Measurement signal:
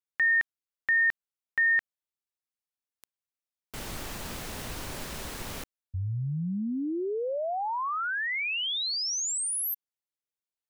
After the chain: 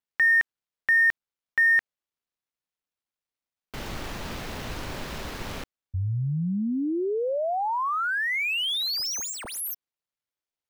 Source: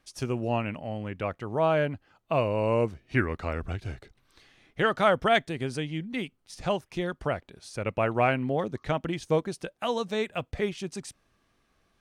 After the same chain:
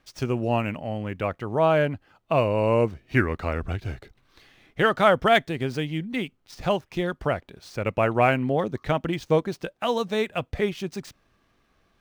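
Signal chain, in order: median filter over 5 samples; trim +4 dB

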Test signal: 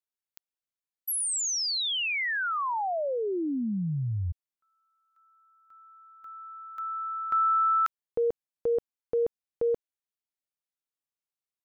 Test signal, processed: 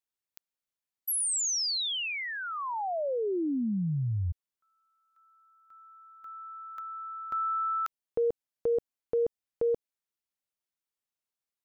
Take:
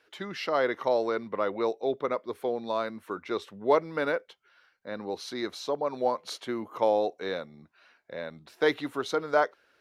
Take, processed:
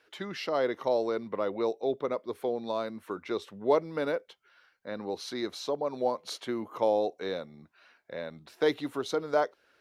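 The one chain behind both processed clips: dynamic bell 1.6 kHz, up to -7 dB, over -41 dBFS, Q 0.79

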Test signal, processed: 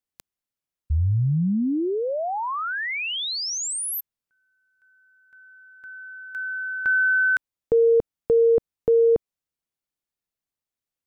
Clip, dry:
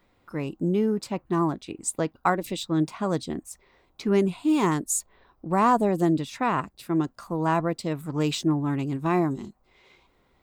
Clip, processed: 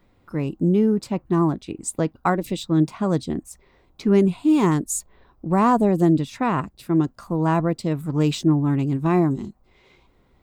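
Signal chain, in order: bass shelf 360 Hz +8.5 dB

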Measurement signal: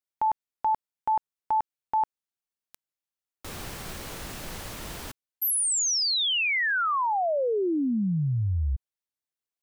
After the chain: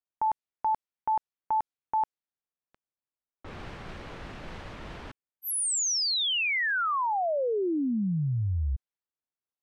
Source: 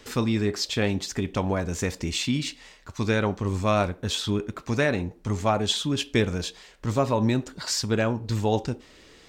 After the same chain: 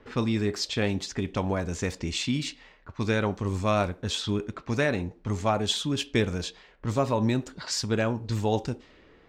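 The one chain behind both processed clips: level-controlled noise filter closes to 1.5 kHz, open at -22 dBFS; trim -2 dB

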